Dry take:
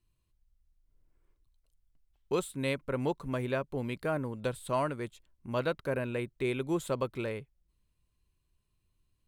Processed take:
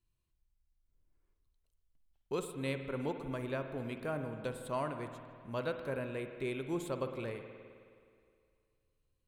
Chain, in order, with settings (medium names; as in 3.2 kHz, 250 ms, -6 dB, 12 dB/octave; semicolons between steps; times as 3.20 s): on a send: tape echo 155 ms, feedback 72%, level -21.5 dB, low-pass 4.6 kHz; on the sum: spring tank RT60 2.1 s, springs 52 ms, chirp 80 ms, DRR 7 dB; trim -6 dB